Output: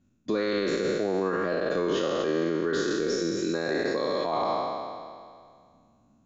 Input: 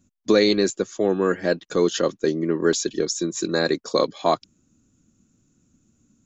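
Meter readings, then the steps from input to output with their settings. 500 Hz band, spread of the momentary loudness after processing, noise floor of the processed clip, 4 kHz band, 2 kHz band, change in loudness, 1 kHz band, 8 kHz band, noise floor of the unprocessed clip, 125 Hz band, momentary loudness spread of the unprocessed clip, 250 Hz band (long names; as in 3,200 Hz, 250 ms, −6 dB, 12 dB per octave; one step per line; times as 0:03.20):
−5.0 dB, 6 LU, −63 dBFS, −7.5 dB, −3.0 dB, −5.5 dB, −2.0 dB, can't be measured, −68 dBFS, −6.0 dB, 6 LU, −5.5 dB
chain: peak hold with a decay on every bin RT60 2.09 s
low-pass filter 3,500 Hz 12 dB per octave
brickwall limiter −13 dBFS, peak gain reduction 9.5 dB
level −5 dB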